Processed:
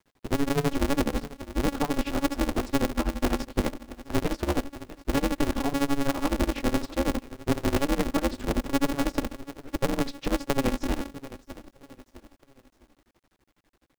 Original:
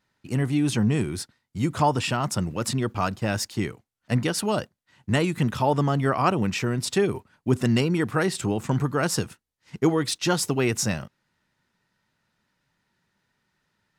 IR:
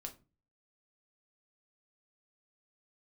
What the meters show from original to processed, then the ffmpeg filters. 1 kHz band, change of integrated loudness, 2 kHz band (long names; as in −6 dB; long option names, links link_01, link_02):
−4.5 dB, −3.5 dB, −4.0 dB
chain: -filter_complex "[0:a]acrossover=split=220|2900[link_01][link_02][link_03];[link_01]acompressor=threshold=-30dB:ratio=4[link_04];[link_02]acompressor=threshold=-37dB:ratio=4[link_05];[link_03]acompressor=threshold=-31dB:ratio=4[link_06];[link_04][link_05][link_06]amix=inputs=3:normalize=0,tiltshelf=frequency=1100:gain=9,aecho=1:1:644|1288|1932:0.112|0.046|0.0189,asplit=2[link_07][link_08];[1:a]atrim=start_sample=2205,adelay=8[link_09];[link_08][link_09]afir=irnorm=-1:irlink=0,volume=-11dB[link_10];[link_07][link_10]amix=inputs=2:normalize=0,adynamicequalizer=threshold=0.01:dfrequency=250:dqfactor=4.1:tfrequency=250:tqfactor=4.1:attack=5:release=100:ratio=0.375:range=2.5:mode=cutabove:tftype=bell,bandreject=frequency=48.34:width_type=h:width=4,bandreject=frequency=96.68:width_type=h:width=4,bandreject=frequency=145.02:width_type=h:width=4,tremolo=f=12:d=0.89,areverse,acompressor=threshold=-24dB:ratio=6,areverse,lowpass=4200,acrusher=bits=11:mix=0:aa=0.000001,aeval=exprs='val(0)*sgn(sin(2*PI*140*n/s))':channel_layout=same,volume=4dB"